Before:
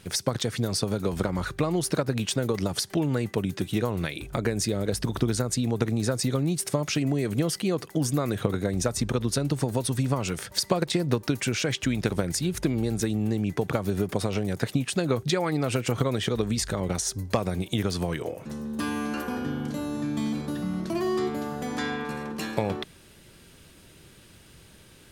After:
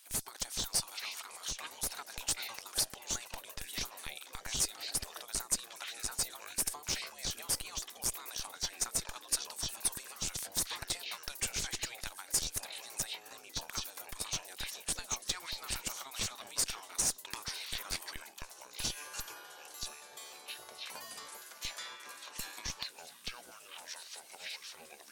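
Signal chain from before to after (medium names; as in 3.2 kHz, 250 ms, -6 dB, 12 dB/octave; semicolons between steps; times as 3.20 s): peaking EQ 800 Hz +12.5 dB 1.1 oct; ever faster or slower copies 351 ms, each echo -7 st, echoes 2; spectral gate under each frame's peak -10 dB weak; differentiator; in parallel at 0 dB: Schmitt trigger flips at -27 dBFS; on the sum: trim -2 dB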